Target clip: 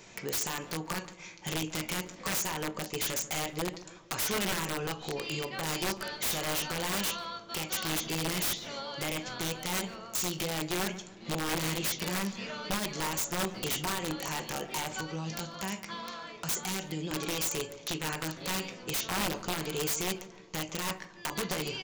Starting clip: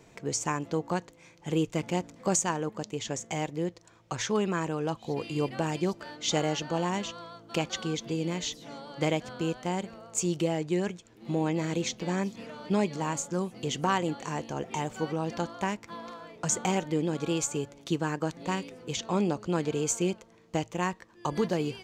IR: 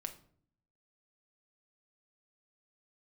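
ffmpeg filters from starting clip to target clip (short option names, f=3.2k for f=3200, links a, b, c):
-filter_complex "[0:a]alimiter=level_in=1dB:limit=-24dB:level=0:latency=1:release=216,volume=-1dB,aresample=16000,aresample=44100,asettb=1/sr,asplit=3[a][b][c];[a]atrim=end=15.004[d];[b]atrim=start=15:end=17.11,asetpts=PTS-STARTPTS,afade=t=in:d=0.004:c=qsin,afade=t=out:st=2.106:d=0.004:c=qsin,acrossover=split=250|3000[e][f][g];[f]acompressor=threshold=-42dB:ratio=3[h];[e][h][g]amix=inputs=3:normalize=0[i];[c]atrim=start=17.106[j];[d][i]acrossfade=d=0.004:c1=hsin:c2=qsin[k];[k][j]acrossfade=d=0.004:c1=qsin:c2=hsin,tiltshelf=f=1.2k:g=-6,asplit=2[l][m];[m]adelay=16,volume=-11dB[n];[l][n]amix=inputs=2:normalize=0[o];[1:a]atrim=start_sample=2205,atrim=end_sample=3528[p];[o][p]afir=irnorm=-1:irlink=0,aeval=exprs='(mod(42.2*val(0)+1,2)-1)/42.2':c=same,asplit=2[q][r];[r]adelay=144,lowpass=f=1.2k:p=1,volume=-14dB,asplit=2[s][t];[t]adelay=144,lowpass=f=1.2k:p=1,volume=0.52,asplit=2[u][v];[v]adelay=144,lowpass=f=1.2k:p=1,volume=0.52,asplit=2[w][x];[x]adelay=144,lowpass=f=1.2k:p=1,volume=0.52,asplit=2[y][z];[z]adelay=144,lowpass=f=1.2k:p=1,volume=0.52[aa];[q][s][u][w][y][aa]amix=inputs=6:normalize=0,volume=7.5dB"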